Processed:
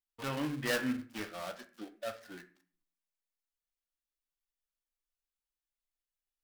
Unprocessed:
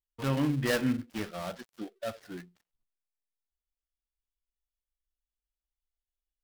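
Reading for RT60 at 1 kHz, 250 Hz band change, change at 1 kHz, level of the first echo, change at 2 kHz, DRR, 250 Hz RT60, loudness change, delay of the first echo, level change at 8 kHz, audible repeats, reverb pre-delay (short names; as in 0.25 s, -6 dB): 0.40 s, -6.5 dB, -3.0 dB, none, -1.0 dB, 7.0 dB, 0.65 s, -5.5 dB, none, -2.0 dB, none, 3 ms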